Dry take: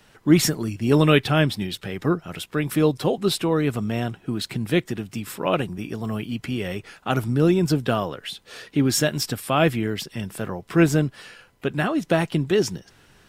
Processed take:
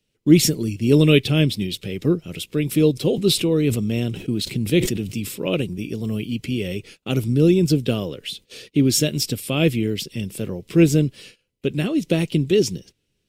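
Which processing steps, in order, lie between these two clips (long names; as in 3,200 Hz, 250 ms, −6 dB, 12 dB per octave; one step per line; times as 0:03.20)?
flat-topped bell 1,100 Hz −15 dB
noise gate −45 dBFS, range −20 dB
0:02.92–0:05.35: level that may fall only so fast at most 84 dB per second
level +3 dB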